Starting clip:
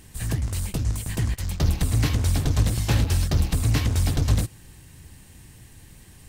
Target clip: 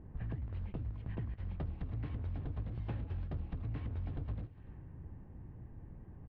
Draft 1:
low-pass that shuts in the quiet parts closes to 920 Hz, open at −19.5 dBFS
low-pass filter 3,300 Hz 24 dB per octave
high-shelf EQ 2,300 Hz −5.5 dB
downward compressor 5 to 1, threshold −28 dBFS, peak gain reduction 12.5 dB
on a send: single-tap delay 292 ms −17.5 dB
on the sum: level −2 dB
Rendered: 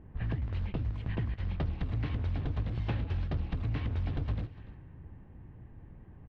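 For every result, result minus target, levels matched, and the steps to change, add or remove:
4,000 Hz band +7.0 dB; downward compressor: peak gain reduction −7 dB
change: high-shelf EQ 2,300 Hz −17.5 dB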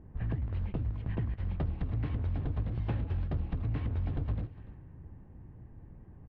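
downward compressor: peak gain reduction −7 dB
change: downward compressor 5 to 1, threshold −36.5 dBFS, peak gain reduction 19 dB

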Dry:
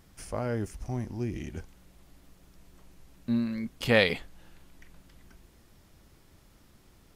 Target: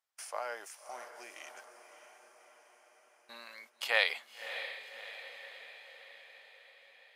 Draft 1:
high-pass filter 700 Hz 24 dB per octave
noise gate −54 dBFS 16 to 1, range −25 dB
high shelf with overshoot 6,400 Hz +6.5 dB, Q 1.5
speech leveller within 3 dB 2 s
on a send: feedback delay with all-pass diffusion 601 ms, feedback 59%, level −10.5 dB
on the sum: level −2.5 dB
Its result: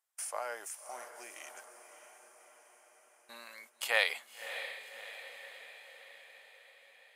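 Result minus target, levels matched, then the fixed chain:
8,000 Hz band +7.0 dB
high-pass filter 700 Hz 24 dB per octave
noise gate −54 dBFS 16 to 1, range −25 dB
speech leveller within 3 dB 2 s
on a send: feedback delay with all-pass diffusion 601 ms, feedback 59%, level −10.5 dB
on the sum: level −2.5 dB

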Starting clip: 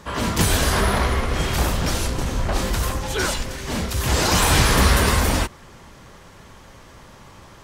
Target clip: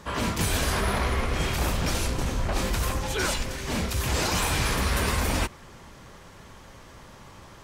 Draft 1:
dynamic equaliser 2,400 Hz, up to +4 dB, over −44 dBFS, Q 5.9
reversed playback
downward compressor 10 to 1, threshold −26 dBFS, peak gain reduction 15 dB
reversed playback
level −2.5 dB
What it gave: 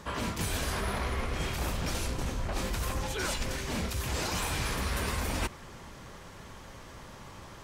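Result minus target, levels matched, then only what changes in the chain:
downward compressor: peak gain reduction +6.5 dB
change: downward compressor 10 to 1, threshold −18.5 dBFS, peak gain reduction 8 dB

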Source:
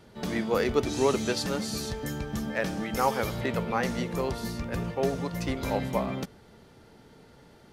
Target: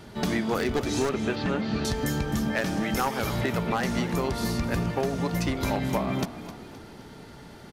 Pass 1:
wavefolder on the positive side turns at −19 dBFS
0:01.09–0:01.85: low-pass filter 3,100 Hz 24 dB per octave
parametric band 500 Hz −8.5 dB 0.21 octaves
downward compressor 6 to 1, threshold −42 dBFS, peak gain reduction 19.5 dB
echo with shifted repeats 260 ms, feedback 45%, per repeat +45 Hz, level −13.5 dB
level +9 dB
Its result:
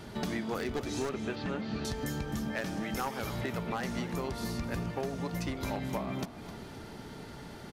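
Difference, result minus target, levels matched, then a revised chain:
downward compressor: peak gain reduction +8 dB
wavefolder on the positive side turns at −19 dBFS
0:01.09–0:01.85: low-pass filter 3,100 Hz 24 dB per octave
parametric band 500 Hz −8.5 dB 0.21 octaves
downward compressor 6 to 1, threshold −32.5 dBFS, peak gain reduction 11.5 dB
echo with shifted repeats 260 ms, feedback 45%, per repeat +45 Hz, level −13.5 dB
level +9 dB

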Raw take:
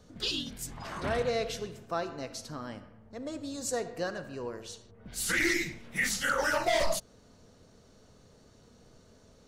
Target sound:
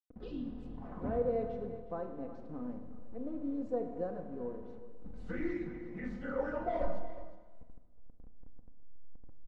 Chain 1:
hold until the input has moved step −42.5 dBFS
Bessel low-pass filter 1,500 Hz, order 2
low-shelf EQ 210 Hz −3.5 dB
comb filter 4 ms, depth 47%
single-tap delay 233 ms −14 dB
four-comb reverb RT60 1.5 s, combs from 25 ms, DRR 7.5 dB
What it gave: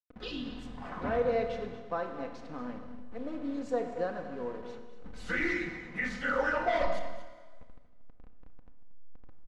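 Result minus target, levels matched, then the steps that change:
2,000 Hz band +11.0 dB; echo 132 ms early
change: Bessel low-pass filter 440 Hz, order 2
change: single-tap delay 365 ms −14 dB

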